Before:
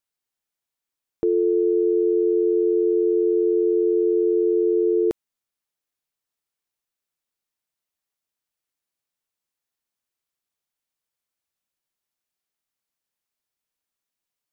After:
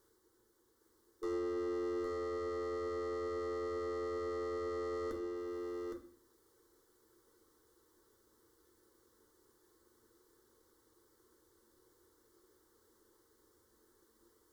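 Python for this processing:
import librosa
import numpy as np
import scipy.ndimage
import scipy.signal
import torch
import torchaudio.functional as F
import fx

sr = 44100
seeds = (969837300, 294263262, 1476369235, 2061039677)

p1 = fx.bin_compress(x, sr, power=0.6)
p2 = fx.dereverb_blind(p1, sr, rt60_s=0.94)
p3 = fx.rider(p2, sr, range_db=10, speed_s=0.5)
p4 = fx.tube_stage(p3, sr, drive_db=35.0, bias=0.25)
p5 = fx.fixed_phaser(p4, sr, hz=680.0, stages=6)
p6 = p5 + fx.echo_single(p5, sr, ms=813, db=-4.5, dry=0)
p7 = fx.rev_fdn(p6, sr, rt60_s=0.5, lf_ratio=1.5, hf_ratio=0.85, size_ms=27.0, drr_db=2.0)
y = p7 * librosa.db_to_amplitude(-1.5)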